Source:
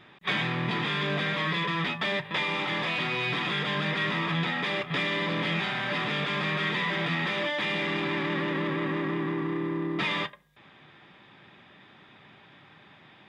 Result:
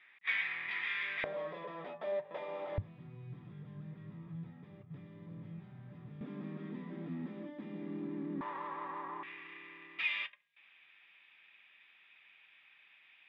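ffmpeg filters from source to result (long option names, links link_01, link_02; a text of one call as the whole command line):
ffmpeg -i in.wav -af "asetnsamples=nb_out_samples=441:pad=0,asendcmd='1.24 bandpass f 590;2.78 bandpass f 100;6.21 bandpass f 250;8.41 bandpass f 960;9.23 bandpass f 2500',bandpass=frequency=2100:width_type=q:width=4.6:csg=0" out.wav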